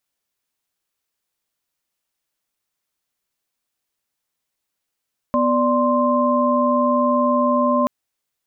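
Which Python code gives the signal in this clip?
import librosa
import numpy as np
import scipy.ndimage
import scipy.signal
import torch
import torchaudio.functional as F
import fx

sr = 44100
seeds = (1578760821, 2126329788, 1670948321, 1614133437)

y = fx.chord(sr, length_s=2.53, notes=(59, 74, 84), wave='sine', level_db=-19.0)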